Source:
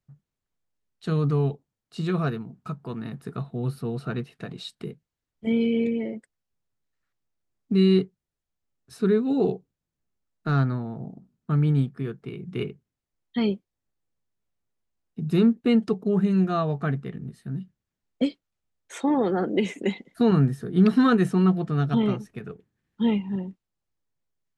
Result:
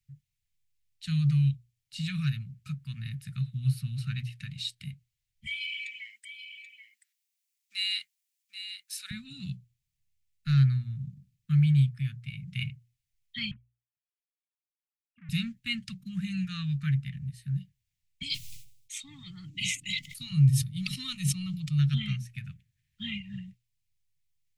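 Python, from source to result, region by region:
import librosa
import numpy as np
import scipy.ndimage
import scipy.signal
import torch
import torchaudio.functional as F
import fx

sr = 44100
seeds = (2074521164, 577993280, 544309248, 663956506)

y = fx.chain(x, sr, fx.highpass(hz=720.0, slope=24),
    fx.high_shelf(hz=5200.0, db=9.0),
    fx.echo_single(ms=782, db=-10.0), at=(5.46, 9.11))
y = fx.chain(y, sr, fx.sine_speech(),
    fx.clip_hard(threshold_db=-29.0),
    fx.transformer_sat(knee_hz=590.0), at=(13.51, 15.29))
y = fx.chain(y, sr, fx.fixed_phaser(hz=320.0, stages=8),
    fx.sustainer(db_per_s=76.0), at=(18.22, 21.79))
y = scipy.signal.sosfilt(scipy.signal.ellip(3, 1.0, 70, [130.0, 2200.0], 'bandstop', fs=sr, output='sos'), y)
y = fx.hum_notches(y, sr, base_hz=60, count=2)
y = F.gain(torch.from_numpy(y), 4.5).numpy()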